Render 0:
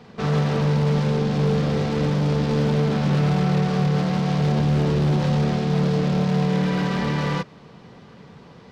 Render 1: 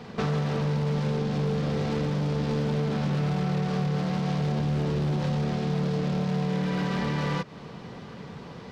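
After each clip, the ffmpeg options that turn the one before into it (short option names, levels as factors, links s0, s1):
-af "acompressor=threshold=0.0355:ratio=6,volume=1.58"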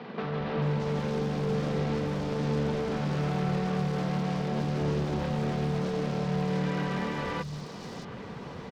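-filter_complex "[0:a]alimiter=limit=0.0708:level=0:latency=1:release=452,acrossover=split=150|4100[s0][s1][s2];[s0]adelay=220[s3];[s2]adelay=620[s4];[s3][s1][s4]amix=inputs=3:normalize=0,volume=1.26"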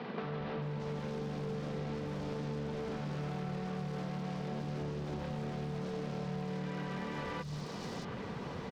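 -af "acompressor=threshold=0.0158:ratio=6"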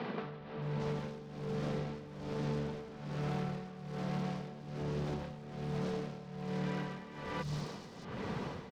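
-af "tremolo=f=1.2:d=0.78,volume=1.41"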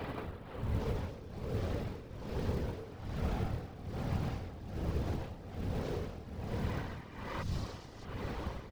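-af "afftfilt=real='hypot(re,im)*cos(2*PI*random(0))':imag='hypot(re,im)*sin(2*PI*random(1))':win_size=512:overlap=0.75,acrusher=bits=7:mode=log:mix=0:aa=0.000001,lowshelf=f=120:t=q:w=1.5:g=7.5,volume=1.78"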